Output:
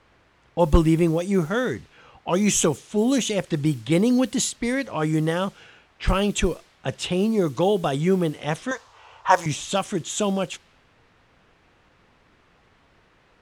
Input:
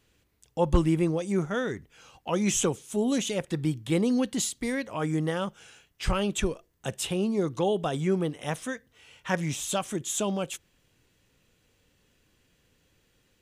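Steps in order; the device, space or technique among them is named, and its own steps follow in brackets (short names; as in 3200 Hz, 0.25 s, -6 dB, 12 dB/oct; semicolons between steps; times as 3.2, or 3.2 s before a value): cassette deck with a dynamic noise filter (white noise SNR 27 dB; low-pass opened by the level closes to 1800 Hz, open at -23 dBFS); 8.71–9.46 EQ curve 120 Hz 0 dB, 170 Hz -18 dB, 1000 Hz +14 dB, 2000 Hz -3 dB, 6500 Hz +8 dB, 9800 Hz +1 dB; gain +5.5 dB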